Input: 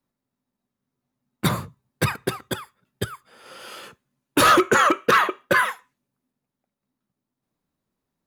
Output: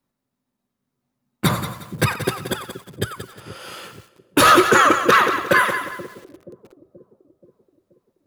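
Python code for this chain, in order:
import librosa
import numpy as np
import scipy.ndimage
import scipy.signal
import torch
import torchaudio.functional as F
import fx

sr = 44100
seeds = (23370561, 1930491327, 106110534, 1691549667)

y = fx.echo_split(x, sr, split_hz=470.0, low_ms=479, high_ms=91, feedback_pct=52, wet_db=-13.0)
y = fx.echo_crushed(y, sr, ms=179, feedback_pct=35, bits=7, wet_db=-10)
y = F.gain(torch.from_numpy(y), 3.0).numpy()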